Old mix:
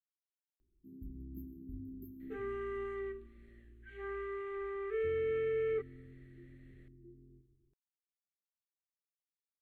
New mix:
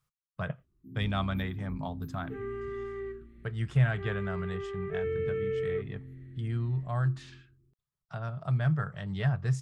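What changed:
speech: unmuted; master: add bell 130 Hz +11 dB 1.8 oct

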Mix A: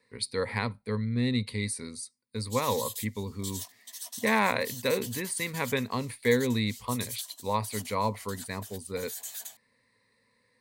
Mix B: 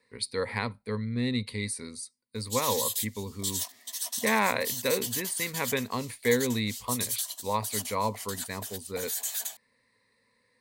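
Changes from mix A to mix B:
background +7.0 dB; master: add bell 130 Hz -3 dB 1.5 oct

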